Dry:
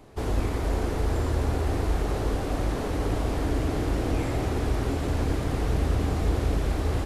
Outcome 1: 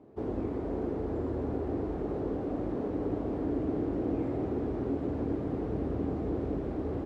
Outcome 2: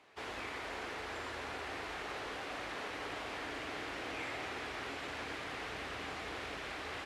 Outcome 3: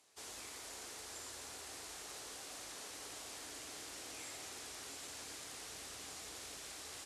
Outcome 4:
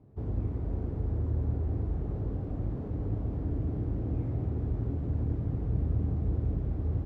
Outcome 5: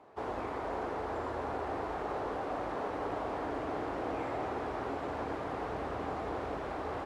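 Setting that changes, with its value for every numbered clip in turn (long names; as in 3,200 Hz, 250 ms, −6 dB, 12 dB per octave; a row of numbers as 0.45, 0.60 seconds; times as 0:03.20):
resonant band-pass, frequency: 310, 2,300, 7,600, 120, 920 Hertz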